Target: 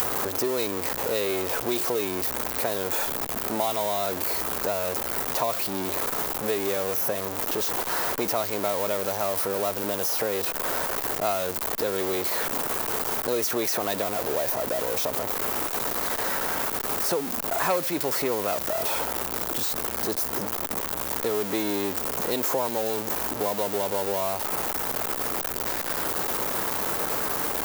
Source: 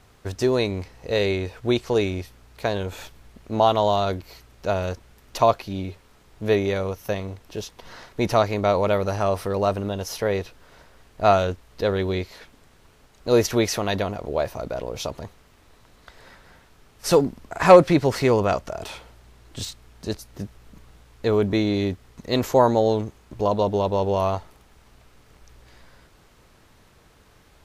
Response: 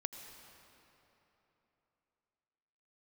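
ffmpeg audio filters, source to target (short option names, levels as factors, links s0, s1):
-filter_complex "[0:a]aeval=exprs='val(0)+0.5*0.119*sgn(val(0))':c=same,aemphasis=mode=production:type=bsi,acrossover=split=220|1500[s0][s1][s2];[s0]acompressor=threshold=0.00501:ratio=4[s3];[s1]acompressor=threshold=0.0501:ratio=4[s4];[s2]acompressor=threshold=0.0398:ratio=4[s5];[s3][s4][s5]amix=inputs=3:normalize=0"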